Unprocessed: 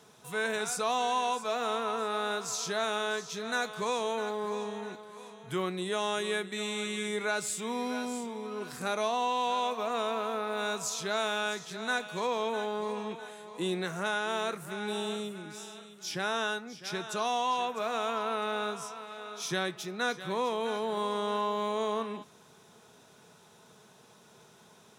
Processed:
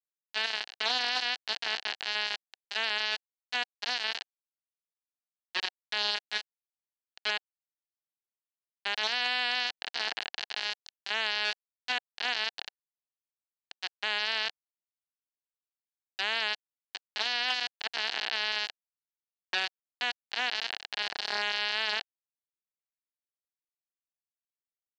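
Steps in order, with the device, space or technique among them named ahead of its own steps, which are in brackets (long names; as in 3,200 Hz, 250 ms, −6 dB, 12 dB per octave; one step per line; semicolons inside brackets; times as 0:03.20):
hand-held game console (bit reduction 4 bits; loudspeaker in its box 480–5,100 Hz, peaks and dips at 530 Hz −7 dB, 760 Hz +5 dB, 1,200 Hz −6 dB, 1,700 Hz +7 dB, 2,900 Hz +8 dB, 4,300 Hz +9 dB)
level −2 dB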